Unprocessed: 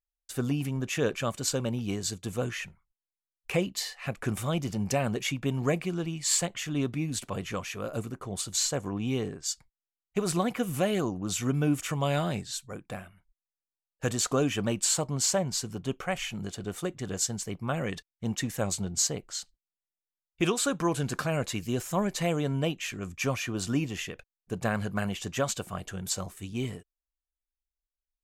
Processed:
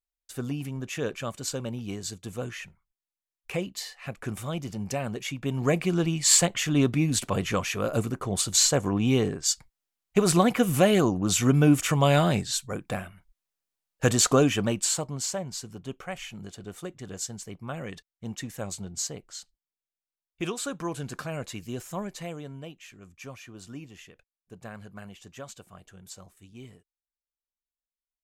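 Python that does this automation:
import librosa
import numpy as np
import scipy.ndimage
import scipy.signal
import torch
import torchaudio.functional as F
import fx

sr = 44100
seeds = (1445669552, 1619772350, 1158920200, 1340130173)

y = fx.gain(x, sr, db=fx.line((5.3, -3.0), (5.96, 7.0), (14.3, 7.0), (15.31, -5.0), (21.91, -5.0), (22.65, -13.0)))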